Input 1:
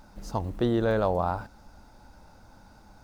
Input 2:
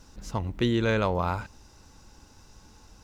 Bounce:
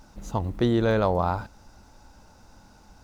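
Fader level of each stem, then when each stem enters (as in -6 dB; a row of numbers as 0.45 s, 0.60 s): -1.0 dB, -5.0 dB; 0.00 s, 0.00 s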